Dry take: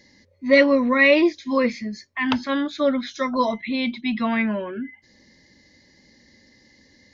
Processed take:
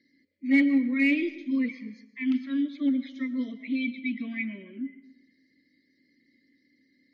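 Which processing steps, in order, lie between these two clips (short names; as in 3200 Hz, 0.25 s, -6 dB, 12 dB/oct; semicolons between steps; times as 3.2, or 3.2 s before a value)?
bin magnitudes rounded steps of 30 dB; vowel filter i; in parallel at -10.5 dB: hard clip -20 dBFS, distortion -14 dB; on the sum: reverb RT60 0.85 s, pre-delay 75 ms, DRR 14 dB; gain -1.5 dB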